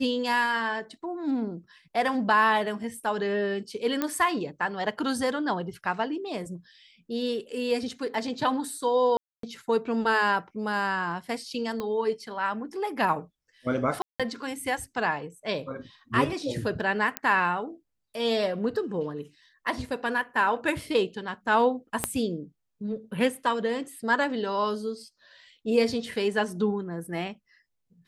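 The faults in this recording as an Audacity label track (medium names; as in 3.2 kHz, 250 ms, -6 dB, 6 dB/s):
4.020000	4.020000	pop -12 dBFS
9.170000	9.430000	dropout 263 ms
11.800000	11.800000	pop -19 dBFS
14.020000	14.200000	dropout 176 ms
17.170000	17.170000	pop -10 dBFS
22.040000	22.040000	pop -9 dBFS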